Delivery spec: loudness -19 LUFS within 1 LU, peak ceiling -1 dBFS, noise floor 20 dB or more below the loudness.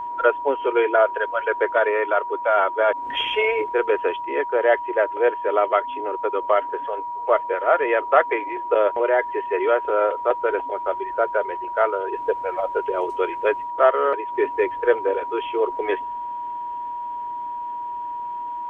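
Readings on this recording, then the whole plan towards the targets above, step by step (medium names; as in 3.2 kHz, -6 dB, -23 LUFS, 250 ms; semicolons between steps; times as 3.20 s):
steady tone 960 Hz; tone level -27 dBFS; loudness -22.5 LUFS; peak level -2.0 dBFS; loudness target -19.0 LUFS
-> band-stop 960 Hz, Q 30; trim +3.5 dB; peak limiter -1 dBFS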